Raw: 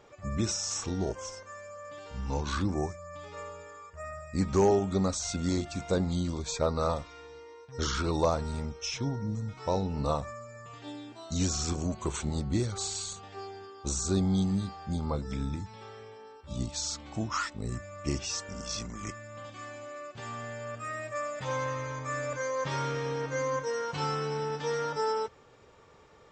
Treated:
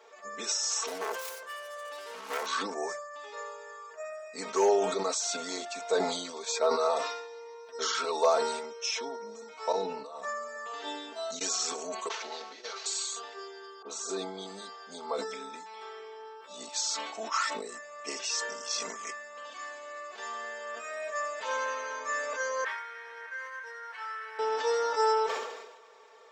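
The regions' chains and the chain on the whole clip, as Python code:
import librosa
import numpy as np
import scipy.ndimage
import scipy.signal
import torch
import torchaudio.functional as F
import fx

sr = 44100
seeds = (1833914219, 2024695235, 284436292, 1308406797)

y = fx.chain(x, sr, fx.self_delay(depth_ms=0.97),
    fx.band_squash(depth_pct=40), at=(0.87, 2.46))
y = fx.chain(y, sr, fx.highpass(hz=110.0, slope=12),
    fx.bass_treble(bass_db=9, treble_db=-1),
    fx.over_compress(threshold_db=-37.0, ratio=-1.0), at=(9.72, 11.41))
y = fx.chain(y, sr, fx.cvsd(bps=32000),
    fx.highpass(hz=420.0, slope=12),
    fx.over_compress(threshold_db=-42.0, ratio=-0.5), at=(12.08, 12.86))
y = fx.chain(y, sr, fx.high_shelf(hz=5300.0, db=-12.0),
    fx.dispersion(late='highs', ms=43.0, hz=1900.0), at=(13.82, 14.46))
y = fx.chain(y, sr, fx.cvsd(bps=64000),
    fx.bandpass_q(hz=1800.0, q=4.1),
    fx.band_squash(depth_pct=70), at=(22.64, 24.39))
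y = scipy.signal.sosfilt(scipy.signal.butter(4, 430.0, 'highpass', fs=sr, output='sos'), y)
y = y + 0.92 * np.pad(y, (int(4.5 * sr / 1000.0), 0))[:len(y)]
y = fx.sustainer(y, sr, db_per_s=50.0)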